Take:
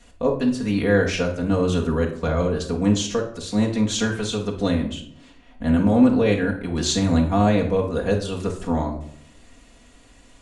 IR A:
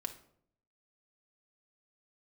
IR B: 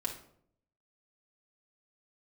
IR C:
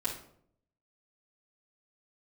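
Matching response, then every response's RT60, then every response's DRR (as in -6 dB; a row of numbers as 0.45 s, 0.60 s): B; 0.65 s, 0.65 s, 0.65 s; 4.0 dB, -2.0 dB, -8.5 dB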